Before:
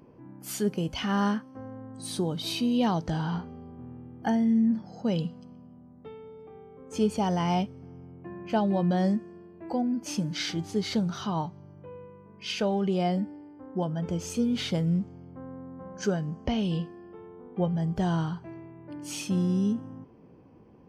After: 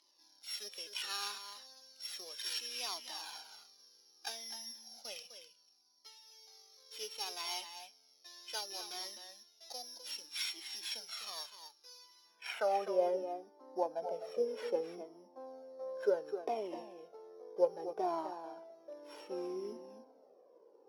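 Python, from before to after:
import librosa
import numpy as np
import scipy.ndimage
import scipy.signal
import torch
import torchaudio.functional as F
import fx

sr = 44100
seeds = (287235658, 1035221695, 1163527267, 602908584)

p1 = np.r_[np.sort(x[:len(x) // 8 * 8].reshape(-1, 8), axis=1).ravel(), x[len(x) // 8 * 8:]]
p2 = scipy.signal.sosfilt(scipy.signal.butter(4, 330.0, 'highpass', fs=sr, output='sos'), p1)
p3 = fx.high_shelf(p2, sr, hz=7000.0, db=6.5)
p4 = np.sign(p3) * np.maximum(np.abs(p3) - 10.0 ** (-48.0 / 20.0), 0.0)
p5 = p3 + (p4 * librosa.db_to_amplitude(-9.0))
p6 = fx.filter_sweep_bandpass(p5, sr, from_hz=4000.0, to_hz=580.0, start_s=11.93, end_s=12.99, q=1.7)
p7 = fx.dynamic_eq(p6, sr, hz=5000.0, q=1.2, threshold_db=-49.0, ratio=4.0, max_db=-6)
p8 = p7 + fx.echo_single(p7, sr, ms=254, db=-9.5, dry=0)
p9 = fx.comb_cascade(p8, sr, direction='falling', hz=0.66)
y = p9 * librosa.db_to_amplitude(4.0)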